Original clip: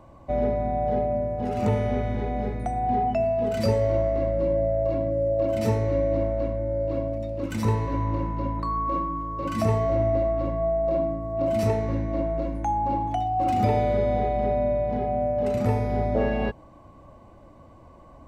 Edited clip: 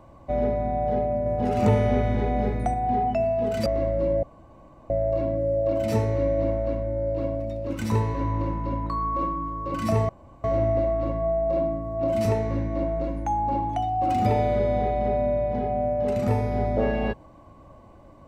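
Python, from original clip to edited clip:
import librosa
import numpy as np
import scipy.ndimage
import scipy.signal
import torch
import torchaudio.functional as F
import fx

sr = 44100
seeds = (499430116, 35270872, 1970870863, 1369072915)

y = fx.edit(x, sr, fx.clip_gain(start_s=1.26, length_s=1.48, db=3.5),
    fx.cut(start_s=3.66, length_s=0.4),
    fx.insert_room_tone(at_s=4.63, length_s=0.67),
    fx.insert_room_tone(at_s=9.82, length_s=0.35), tone=tone)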